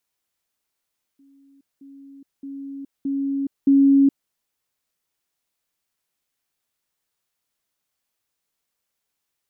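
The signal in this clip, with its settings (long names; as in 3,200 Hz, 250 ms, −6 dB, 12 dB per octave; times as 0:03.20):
level staircase 276 Hz −51 dBFS, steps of 10 dB, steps 5, 0.42 s 0.20 s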